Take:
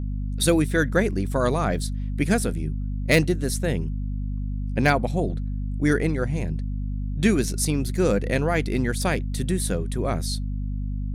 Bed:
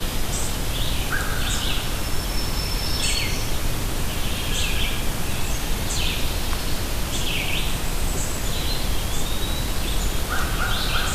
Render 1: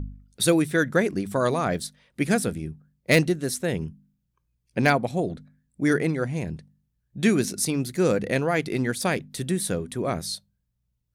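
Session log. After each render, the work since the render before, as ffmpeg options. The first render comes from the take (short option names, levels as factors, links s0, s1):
-af "bandreject=f=50:t=h:w=4,bandreject=f=100:t=h:w=4,bandreject=f=150:t=h:w=4,bandreject=f=200:t=h:w=4,bandreject=f=250:t=h:w=4"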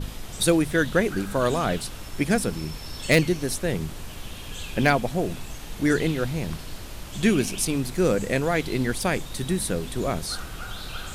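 -filter_complex "[1:a]volume=0.237[s0];[0:a][s0]amix=inputs=2:normalize=0"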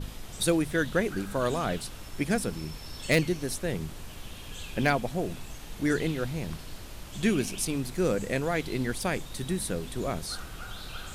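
-af "volume=0.562"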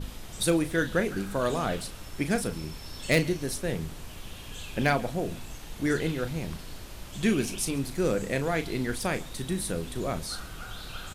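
-filter_complex "[0:a]asplit=2[s0][s1];[s1]adelay=36,volume=0.299[s2];[s0][s2]amix=inputs=2:normalize=0,aecho=1:1:138:0.0708"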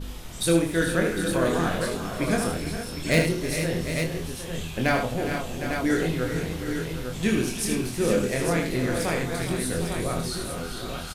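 -filter_complex "[0:a]asplit=2[s0][s1];[s1]adelay=24,volume=0.631[s2];[s0][s2]amix=inputs=2:normalize=0,asplit=2[s3][s4];[s4]aecho=0:1:77|320|408|457|757|851:0.473|0.158|0.282|0.335|0.266|0.473[s5];[s3][s5]amix=inputs=2:normalize=0"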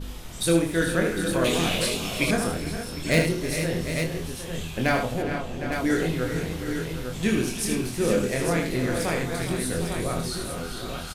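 -filter_complex "[0:a]asettb=1/sr,asplit=3[s0][s1][s2];[s0]atrim=end=1.444[s3];[s1]atrim=start=1.44:end=2.31,asetpts=PTS-STARTPTS,afade=t=in:d=0.004:c=qsin,afade=t=out:st=0.866:d=0.004:c=qsin,highshelf=f=2000:t=q:w=3:g=7.5[s4];[s2]atrim=start=2.306[s5];[s3][s4]acrossfade=d=0.004:c1=hsin:c2=qsin[s6];[s6][s5]acrossfade=d=0.004:c1=qsin:c2=hsin,asettb=1/sr,asplit=3[s7][s8][s9];[s7]atrim=end=5.224[s10];[s8]atrim=start=5.22:end=5.72,asetpts=PTS-STARTPTS,afade=t=in:d=0.004:c=qsin,afade=t=out:st=0.496:d=0.004:c=qsin,highshelf=f=5200:g=-12[s11];[s9]atrim=start=5.716[s12];[s10][s11]acrossfade=d=0.004:c1=hsin:c2=qsin[s13];[s13][s12]acrossfade=d=0.004:c1=qsin:c2=hsin"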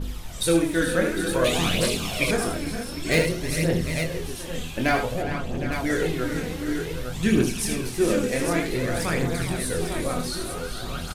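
-af "aphaser=in_gain=1:out_gain=1:delay=4.1:decay=0.45:speed=0.54:type=triangular"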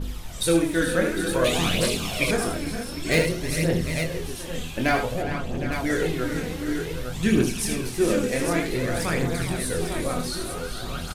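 -af anull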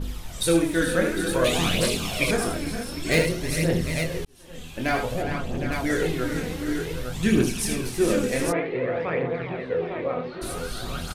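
-filter_complex "[0:a]asplit=3[s0][s1][s2];[s0]afade=t=out:st=8.51:d=0.02[s3];[s1]highpass=170,equalizer=f=210:t=q:w=4:g=-8,equalizer=f=310:t=q:w=4:g=-5,equalizer=f=490:t=q:w=4:g=6,equalizer=f=1500:t=q:w=4:g=-6,lowpass=f=2500:w=0.5412,lowpass=f=2500:w=1.3066,afade=t=in:st=8.51:d=0.02,afade=t=out:st=10.41:d=0.02[s4];[s2]afade=t=in:st=10.41:d=0.02[s5];[s3][s4][s5]amix=inputs=3:normalize=0,asplit=2[s6][s7];[s6]atrim=end=4.25,asetpts=PTS-STARTPTS,afade=t=out:st=4.246:d=0.004:c=hsin[s8];[s7]atrim=start=4.25,asetpts=PTS-STARTPTS,afade=t=in:d=0.89[s9];[s8][s9]concat=n=2:v=0:a=1"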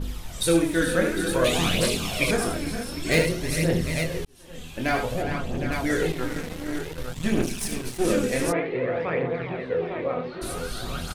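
-filter_complex "[0:a]asettb=1/sr,asplit=3[s0][s1][s2];[s0]atrim=end=6.124[s3];[s1]atrim=start=6.12:end=8.05,asetpts=PTS-STARTPTS,afade=t=in:d=0.004:c=qsin,afade=t=out:st=1.926:d=0.004:c=qsin,aeval=exprs='if(lt(val(0),0),0.251*val(0),val(0))':c=same[s4];[s2]atrim=start=8.046[s5];[s3][s4]acrossfade=d=0.004:c1=hsin:c2=qsin[s6];[s6][s5]acrossfade=d=0.004:c1=qsin:c2=hsin"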